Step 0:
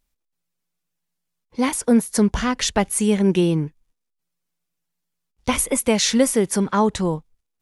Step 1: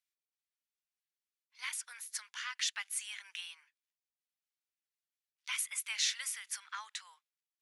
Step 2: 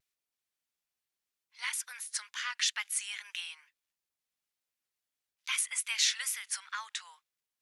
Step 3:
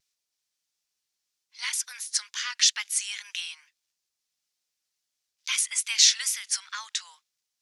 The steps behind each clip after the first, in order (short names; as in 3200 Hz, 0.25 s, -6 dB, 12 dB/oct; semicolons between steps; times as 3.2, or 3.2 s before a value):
Bessel high-pass 2400 Hz, order 6; high shelf 4100 Hz -12 dB; gain -3.5 dB
wow and flutter 66 cents; gain +4.5 dB
bell 5500 Hz +12 dB 1.5 oct